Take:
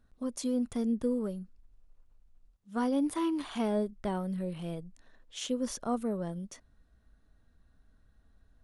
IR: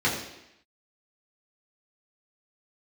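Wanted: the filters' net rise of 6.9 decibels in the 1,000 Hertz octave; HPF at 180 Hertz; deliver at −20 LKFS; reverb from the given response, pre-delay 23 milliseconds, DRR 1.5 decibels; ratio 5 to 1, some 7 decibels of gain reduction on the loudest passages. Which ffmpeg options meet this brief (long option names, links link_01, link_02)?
-filter_complex "[0:a]highpass=180,equalizer=frequency=1000:width_type=o:gain=8.5,acompressor=threshold=-32dB:ratio=5,asplit=2[link_01][link_02];[1:a]atrim=start_sample=2205,adelay=23[link_03];[link_02][link_03]afir=irnorm=-1:irlink=0,volume=-15.5dB[link_04];[link_01][link_04]amix=inputs=2:normalize=0,volume=14dB"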